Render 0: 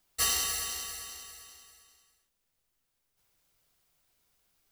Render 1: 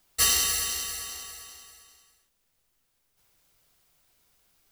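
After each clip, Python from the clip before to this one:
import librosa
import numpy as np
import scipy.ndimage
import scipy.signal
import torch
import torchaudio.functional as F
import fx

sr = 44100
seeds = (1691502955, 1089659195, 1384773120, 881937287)

y = fx.dynamic_eq(x, sr, hz=830.0, q=1.1, threshold_db=-53.0, ratio=4.0, max_db=-5)
y = F.gain(torch.from_numpy(y), 6.0).numpy()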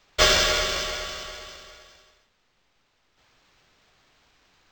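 y = np.interp(np.arange(len(x)), np.arange(len(x))[::4], x[::4])
y = F.gain(torch.from_numpy(y), 6.0).numpy()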